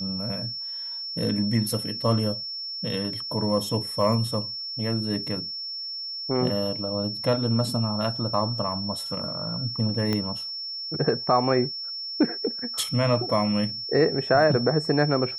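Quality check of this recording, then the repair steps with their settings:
whistle 5,400 Hz −31 dBFS
0:10.13: click −13 dBFS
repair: click removal
notch filter 5,400 Hz, Q 30

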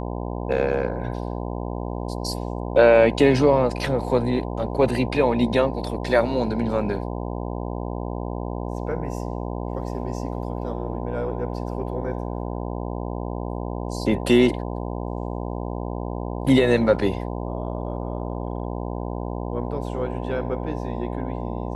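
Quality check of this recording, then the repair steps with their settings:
mains buzz 60 Hz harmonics 17 −29 dBFS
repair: hum removal 60 Hz, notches 17

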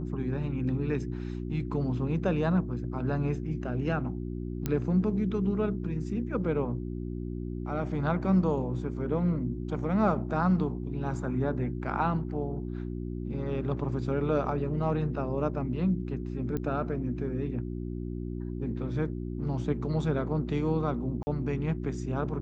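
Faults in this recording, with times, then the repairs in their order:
mains hum 60 Hz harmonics 6 −35 dBFS
0:04.66: click −16 dBFS
0:16.57: click −21 dBFS
0:21.23–0:21.27: drop-out 40 ms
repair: click removal
hum removal 60 Hz, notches 6
repair the gap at 0:21.23, 40 ms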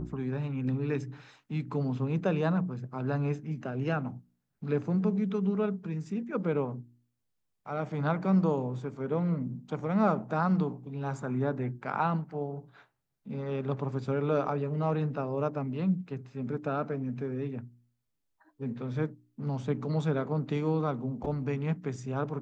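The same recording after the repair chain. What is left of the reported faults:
none of them is left

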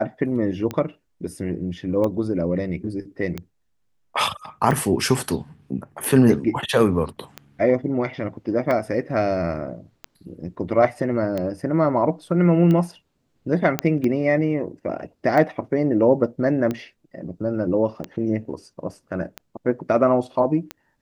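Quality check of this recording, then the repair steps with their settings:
scratch tick 45 rpm −14 dBFS
0:13.79: click −5 dBFS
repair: click removal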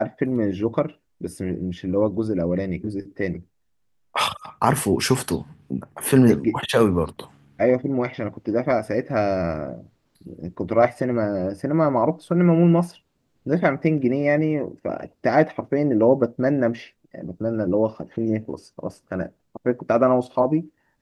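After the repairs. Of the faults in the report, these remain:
none of them is left

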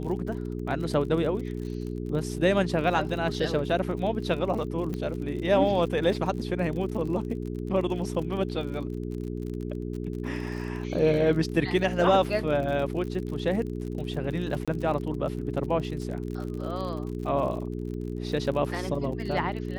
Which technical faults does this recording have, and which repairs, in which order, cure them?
surface crackle 46 per second −35 dBFS
mains hum 60 Hz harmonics 7 −33 dBFS
0:04.94: click −21 dBFS
0:14.65–0:14.68: drop-out 26 ms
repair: click removal
hum removal 60 Hz, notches 7
repair the gap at 0:14.65, 26 ms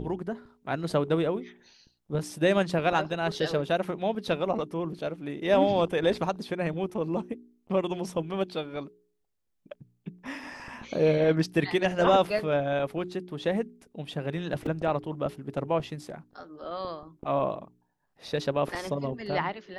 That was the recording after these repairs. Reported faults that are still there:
none of them is left

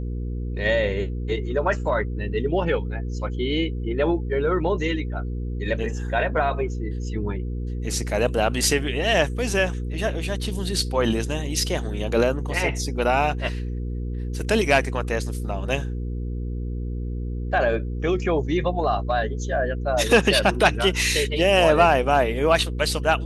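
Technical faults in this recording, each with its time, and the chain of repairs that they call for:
mains hum 60 Hz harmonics 8 −28 dBFS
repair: hum removal 60 Hz, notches 8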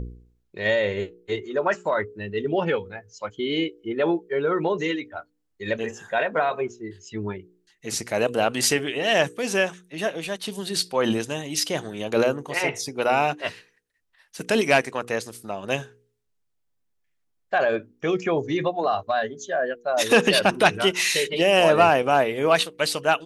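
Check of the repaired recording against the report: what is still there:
none of them is left

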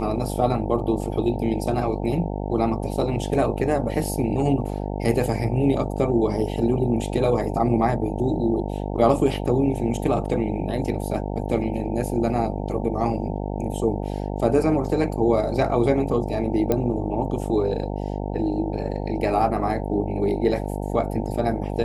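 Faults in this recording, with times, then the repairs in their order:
mains buzz 50 Hz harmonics 18 −28 dBFS
0:16.72: click −9 dBFS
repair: click removal
hum removal 50 Hz, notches 18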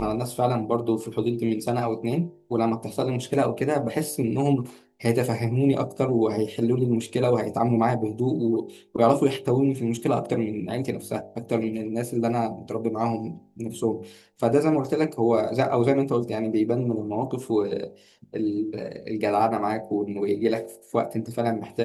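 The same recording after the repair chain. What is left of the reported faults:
none of them is left

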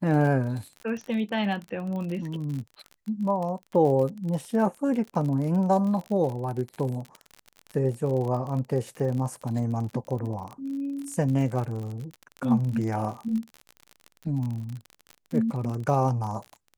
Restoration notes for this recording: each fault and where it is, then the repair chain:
surface crackle 43 per second −32 dBFS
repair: click removal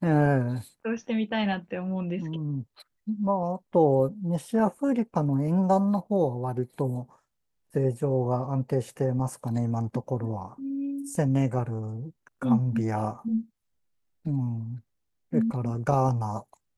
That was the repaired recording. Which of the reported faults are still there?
none of them is left

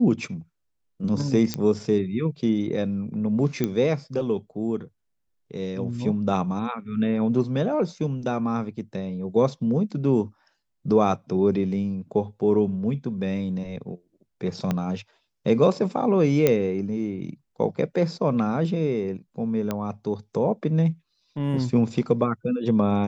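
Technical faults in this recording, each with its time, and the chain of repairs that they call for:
0:01.54: click −10 dBFS
0:03.64: click −11 dBFS
0:14.71: click −12 dBFS
0:16.47: click −6 dBFS
0:19.71: click −13 dBFS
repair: click removal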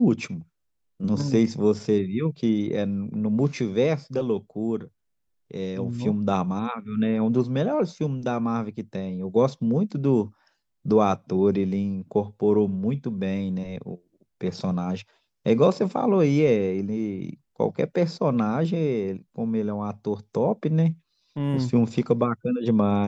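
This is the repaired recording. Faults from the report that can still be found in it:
0:14.71: click

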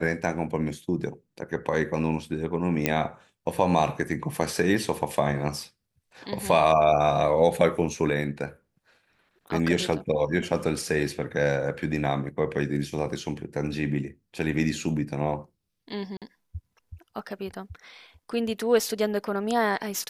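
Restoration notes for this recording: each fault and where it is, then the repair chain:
0:02.86: click −7 dBFS
0:16.17–0:16.22: drop-out 47 ms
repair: click removal
repair the gap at 0:16.17, 47 ms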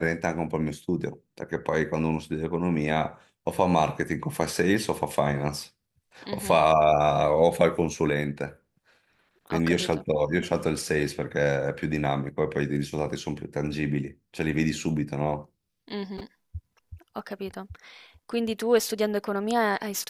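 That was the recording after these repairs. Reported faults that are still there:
0:02.86: click

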